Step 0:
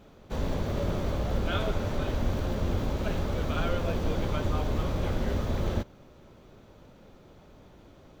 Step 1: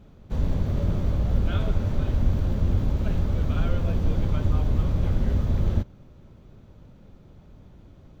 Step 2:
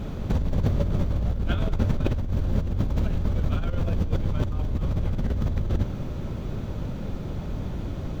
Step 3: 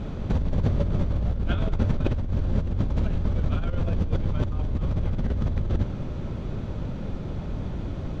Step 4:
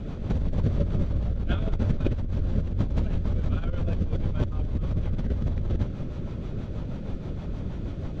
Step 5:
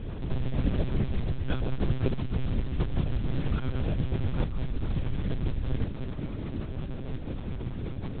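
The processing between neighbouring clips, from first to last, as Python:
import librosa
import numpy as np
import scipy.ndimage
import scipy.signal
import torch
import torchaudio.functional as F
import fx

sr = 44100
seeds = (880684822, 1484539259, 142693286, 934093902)

y1 = fx.bass_treble(x, sr, bass_db=12, treble_db=-1)
y1 = y1 * 10.0 ** (-4.5 / 20.0)
y2 = fx.over_compress(y1, sr, threshold_db=-32.0, ratio=-1.0)
y2 = y2 * 10.0 ** (8.5 / 20.0)
y3 = fx.air_absorb(y2, sr, metres=68.0)
y4 = fx.rotary(y3, sr, hz=6.3)
y5 = fx.mod_noise(y4, sr, seeds[0], snr_db=17)
y5 = fx.lpc_monotone(y5, sr, seeds[1], pitch_hz=130.0, order=10)
y5 = y5 * 10.0 ** (-2.0 / 20.0)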